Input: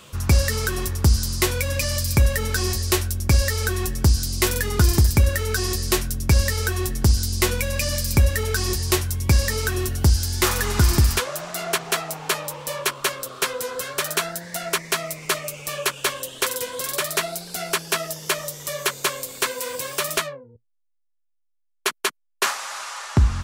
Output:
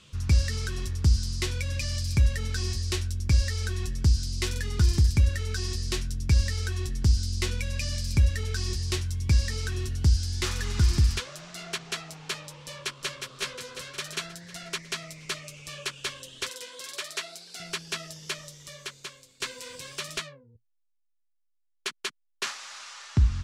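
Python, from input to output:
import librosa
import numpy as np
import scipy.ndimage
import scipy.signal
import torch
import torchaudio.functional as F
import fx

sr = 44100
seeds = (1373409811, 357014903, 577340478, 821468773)

y = fx.echo_throw(x, sr, start_s=12.65, length_s=0.53, ms=360, feedback_pct=60, wet_db=-5.0)
y = fx.highpass(y, sr, hz=380.0, slope=12, at=(16.49, 17.6))
y = fx.edit(y, sr, fx.fade_out_to(start_s=18.24, length_s=1.16, floor_db=-14.5), tone=tone)
y = scipy.signal.sosfilt(scipy.signal.butter(2, 5500.0, 'lowpass', fs=sr, output='sos'), y)
y = fx.peak_eq(y, sr, hz=730.0, db=-13.5, octaves=2.8)
y = y * 10.0 ** (-3.0 / 20.0)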